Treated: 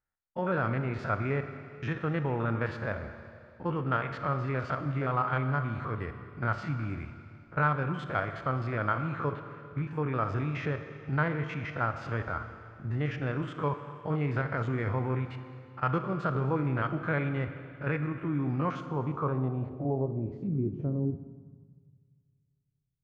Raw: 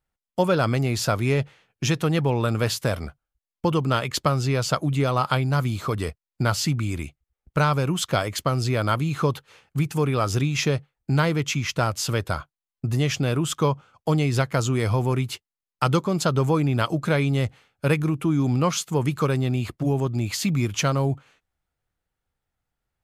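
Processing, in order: stepped spectrum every 50 ms; Schroeder reverb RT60 2.4 s, combs from 27 ms, DRR 8 dB; low-pass sweep 1700 Hz -> 150 Hz, 18.64–21.96; gain -8.5 dB

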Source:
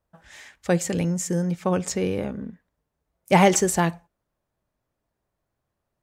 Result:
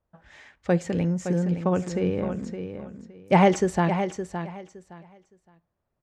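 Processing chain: tape spacing loss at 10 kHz 20 dB; on a send: feedback echo 0.565 s, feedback 21%, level -9 dB

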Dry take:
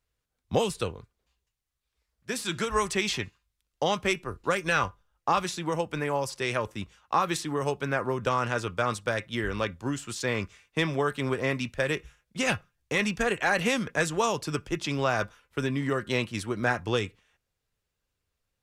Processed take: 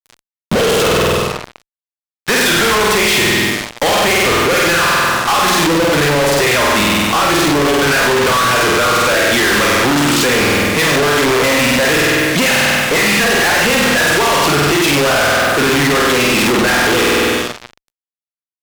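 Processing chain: rotary speaker horn 0.7 Hz, later 8 Hz, at 10.61; sample leveller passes 1; RIAA curve recording; in parallel at -6.5 dB: overloaded stage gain 21 dB; on the sum: compressor 6:1, threshold -24 dBFS, peak gain reduction 9 dB; EQ curve 1600 Hz 0 dB, 3200 Hz -6 dB, 11000 Hz -27 dB; buzz 120 Hz, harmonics 11, -64 dBFS -3 dB/oct; flutter echo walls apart 8.3 m, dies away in 0.99 s; limiter -22 dBFS, peak gain reduction 10 dB; on a send at -12 dB: reverb RT60 0.65 s, pre-delay 28 ms; on the sum: fuzz box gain 57 dB, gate -53 dBFS; upward compressor, threshold -34 dBFS; gain +1.5 dB

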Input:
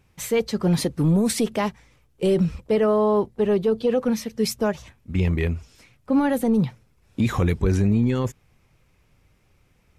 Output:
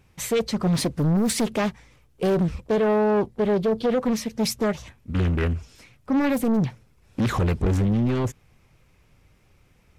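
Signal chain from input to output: soft clip -19 dBFS, distortion -14 dB; Doppler distortion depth 0.62 ms; gain +2.5 dB

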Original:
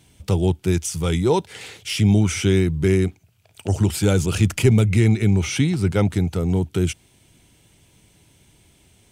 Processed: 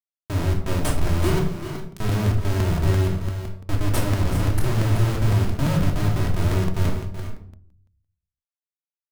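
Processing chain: per-bin expansion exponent 2; inverse Chebyshev band-stop 830–4800 Hz, stop band 50 dB; high shelf 6500 Hz +9 dB; harmonic-percussive split percussive -8 dB; bell 5100 Hz +14.5 dB 0.86 oct; bit-crush 9-bit; Schmitt trigger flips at -31 dBFS; tapped delay 0.378/0.408 s -11/-13 dB; reverb RT60 0.60 s, pre-delay 3 ms, DRR -1 dB; crackling interface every 0.17 s, samples 128, repeat, from 0.9

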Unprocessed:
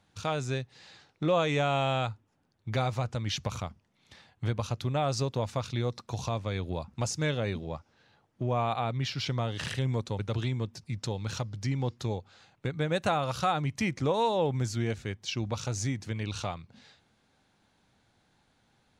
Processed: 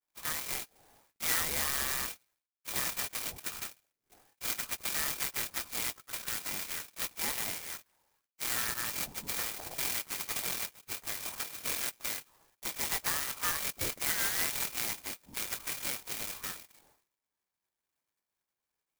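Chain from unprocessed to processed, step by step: expander -58 dBFS; frequency shift +95 Hz; harmoniser +3 st -9 dB; inverted band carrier 2600 Hz; clock jitter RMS 0.12 ms; gain -5.5 dB

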